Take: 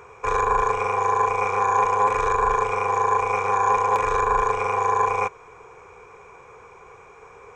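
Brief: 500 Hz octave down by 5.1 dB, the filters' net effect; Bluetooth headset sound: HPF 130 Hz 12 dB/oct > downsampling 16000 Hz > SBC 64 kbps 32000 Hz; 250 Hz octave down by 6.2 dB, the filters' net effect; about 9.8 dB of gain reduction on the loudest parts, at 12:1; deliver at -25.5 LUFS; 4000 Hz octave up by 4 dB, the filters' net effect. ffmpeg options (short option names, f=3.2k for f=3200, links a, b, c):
-af "equalizer=f=250:t=o:g=-8,equalizer=f=500:t=o:g=-3.5,equalizer=f=4k:t=o:g=5.5,acompressor=threshold=-27dB:ratio=12,highpass=130,aresample=16000,aresample=44100,volume=5.5dB" -ar 32000 -c:a sbc -b:a 64k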